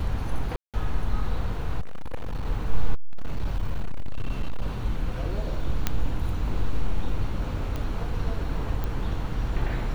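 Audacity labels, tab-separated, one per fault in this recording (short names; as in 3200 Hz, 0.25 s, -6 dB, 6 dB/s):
0.560000	0.740000	gap 0.177 s
1.800000	2.460000	clipped -25 dBFS
2.940000	4.670000	clipped -20 dBFS
5.870000	5.870000	pop -8 dBFS
7.760000	7.760000	pop -19 dBFS
8.840000	8.840000	pop -18 dBFS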